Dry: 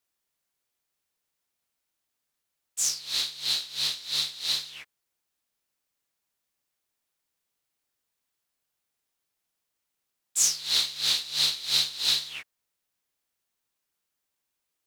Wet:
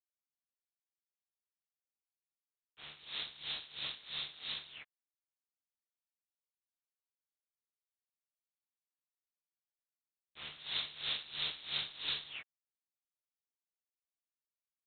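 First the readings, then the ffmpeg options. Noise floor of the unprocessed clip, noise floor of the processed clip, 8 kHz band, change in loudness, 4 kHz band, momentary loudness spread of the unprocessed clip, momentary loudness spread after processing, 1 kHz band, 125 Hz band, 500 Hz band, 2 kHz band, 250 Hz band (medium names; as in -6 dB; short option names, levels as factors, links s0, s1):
-83 dBFS, under -85 dBFS, under -40 dB, -14.5 dB, -13.5 dB, 10 LU, 16 LU, -7.5 dB, -8.0 dB, -7.0 dB, -7.0 dB, no reading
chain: -af "volume=0.447" -ar 8000 -c:a adpcm_g726 -b:a 24k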